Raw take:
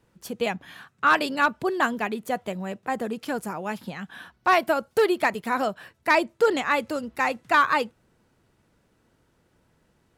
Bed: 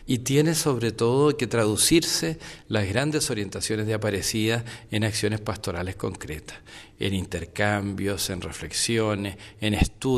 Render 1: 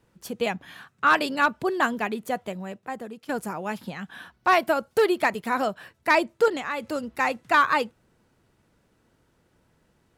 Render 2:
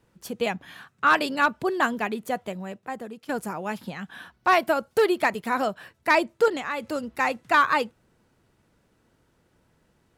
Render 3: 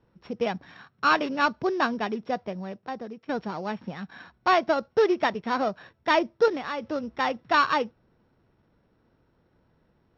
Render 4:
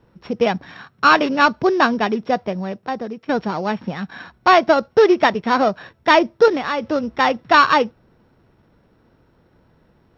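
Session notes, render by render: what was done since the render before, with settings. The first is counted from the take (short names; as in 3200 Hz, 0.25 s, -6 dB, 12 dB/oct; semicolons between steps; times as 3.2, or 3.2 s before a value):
2.23–3.29 fade out, to -12.5 dB; 6.48–6.92 compressor 2.5:1, threshold -28 dBFS
nothing audible
sample sorter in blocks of 8 samples; Gaussian blur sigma 2.4 samples
gain +9.5 dB; limiter -3 dBFS, peak gain reduction 2 dB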